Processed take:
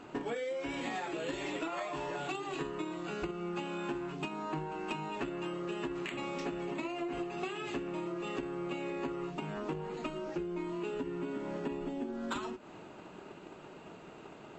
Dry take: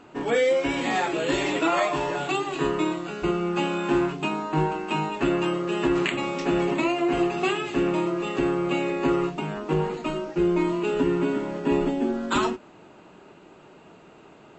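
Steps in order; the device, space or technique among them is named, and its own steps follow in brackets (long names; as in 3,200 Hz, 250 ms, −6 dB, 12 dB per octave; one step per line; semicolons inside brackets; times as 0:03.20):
drum-bus smash (transient designer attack +8 dB, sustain +2 dB; downward compressor 10 to 1, threshold −32 dBFS, peak gain reduction 19.5 dB; soft clipping −25 dBFS, distortion −21 dB)
level −1.5 dB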